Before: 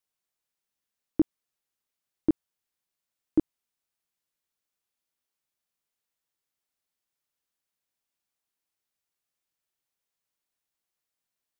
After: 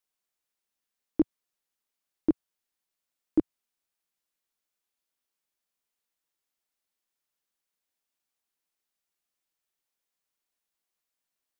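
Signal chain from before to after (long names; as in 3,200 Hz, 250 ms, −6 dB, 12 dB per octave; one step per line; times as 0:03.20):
parametric band 110 Hz −14 dB 0.54 octaves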